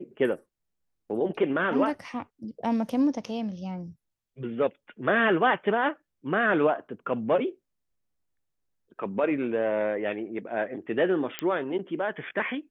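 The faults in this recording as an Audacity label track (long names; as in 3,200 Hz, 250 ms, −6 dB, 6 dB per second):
11.390000	11.390000	click −13 dBFS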